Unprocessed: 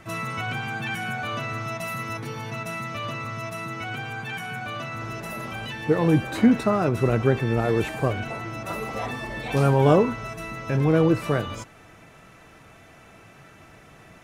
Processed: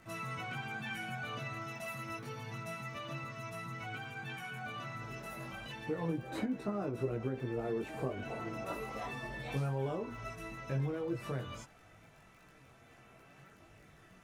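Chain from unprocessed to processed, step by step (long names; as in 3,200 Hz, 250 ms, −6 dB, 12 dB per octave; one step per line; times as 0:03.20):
0:06.09–0:08.75: parametric band 390 Hz +7.5 dB 2.1 octaves
downward compressor 6 to 1, threshold −22 dBFS, peak gain reduction 14.5 dB
surface crackle 19 per second −39 dBFS
multi-voice chorus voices 4, 0.28 Hz, delay 19 ms, depth 4.3 ms
level −8 dB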